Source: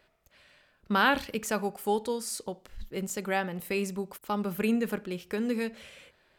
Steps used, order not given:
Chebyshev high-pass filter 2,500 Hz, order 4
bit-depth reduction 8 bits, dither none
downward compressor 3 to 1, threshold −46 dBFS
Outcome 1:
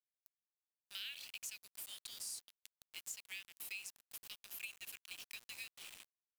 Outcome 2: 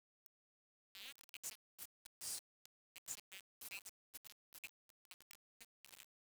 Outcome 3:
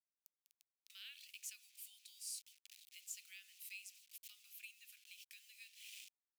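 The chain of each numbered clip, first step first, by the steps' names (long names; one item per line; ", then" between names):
Chebyshev high-pass filter, then bit-depth reduction, then downward compressor
downward compressor, then Chebyshev high-pass filter, then bit-depth reduction
bit-depth reduction, then downward compressor, then Chebyshev high-pass filter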